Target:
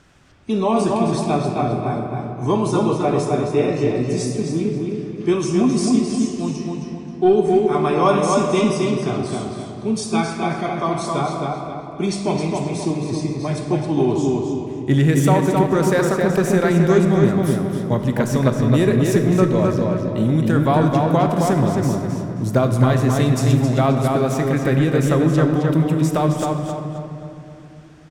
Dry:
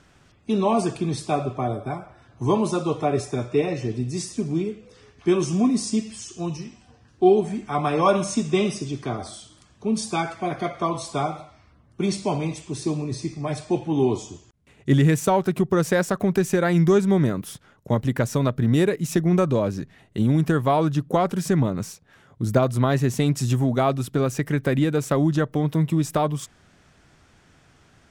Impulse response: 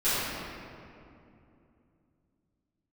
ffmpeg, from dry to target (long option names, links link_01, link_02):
-filter_complex "[0:a]asplit=2[link_01][link_02];[link_02]adelay=265,lowpass=frequency=4100:poles=1,volume=-3dB,asplit=2[link_03][link_04];[link_04]adelay=265,lowpass=frequency=4100:poles=1,volume=0.42,asplit=2[link_05][link_06];[link_06]adelay=265,lowpass=frequency=4100:poles=1,volume=0.42,asplit=2[link_07][link_08];[link_08]adelay=265,lowpass=frequency=4100:poles=1,volume=0.42,asplit=2[link_09][link_10];[link_10]adelay=265,lowpass=frequency=4100:poles=1,volume=0.42[link_11];[link_01][link_03][link_05][link_07][link_09][link_11]amix=inputs=6:normalize=0,acontrast=23,asplit=2[link_12][link_13];[1:a]atrim=start_sample=2205,adelay=24[link_14];[link_13][link_14]afir=irnorm=-1:irlink=0,volume=-20dB[link_15];[link_12][link_15]amix=inputs=2:normalize=0,volume=-3dB"